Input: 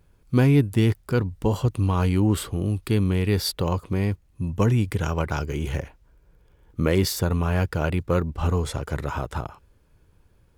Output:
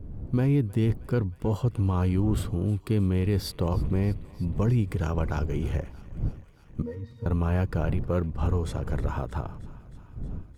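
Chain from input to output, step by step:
wind on the microphone 110 Hz −32 dBFS
tilt shelving filter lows +4 dB, about 1,200 Hz
brickwall limiter −11 dBFS, peak gain reduction 6.5 dB
0:06.82–0:07.26: resonances in every octave A#, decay 0.15 s
feedback echo with a high-pass in the loop 313 ms, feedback 80%, high-pass 610 Hz, level −20 dB
level −5.5 dB

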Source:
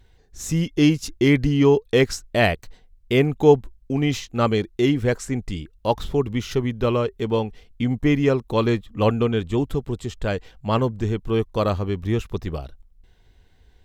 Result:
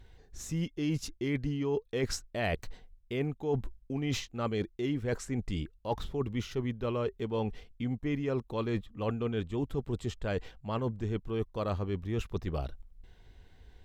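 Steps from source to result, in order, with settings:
high-shelf EQ 4,800 Hz −5 dB
reversed playback
downward compressor 6 to 1, threshold −30 dBFS, peak gain reduction 20 dB
reversed playback

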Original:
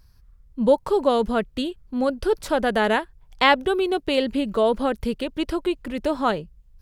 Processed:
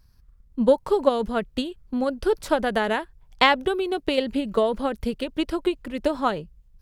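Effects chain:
transient designer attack +8 dB, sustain +4 dB
level −5 dB

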